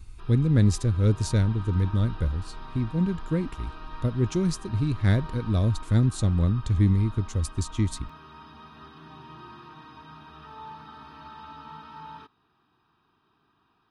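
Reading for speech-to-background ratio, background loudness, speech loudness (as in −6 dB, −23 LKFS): 19.5 dB, −45.0 LKFS, −25.5 LKFS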